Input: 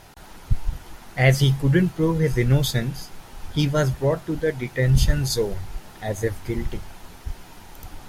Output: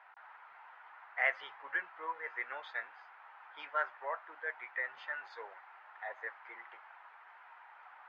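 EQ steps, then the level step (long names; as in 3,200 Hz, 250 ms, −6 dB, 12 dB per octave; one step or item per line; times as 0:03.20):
high-pass filter 920 Hz 24 dB per octave
low-pass filter 1,900 Hz 24 dB per octave
−3.0 dB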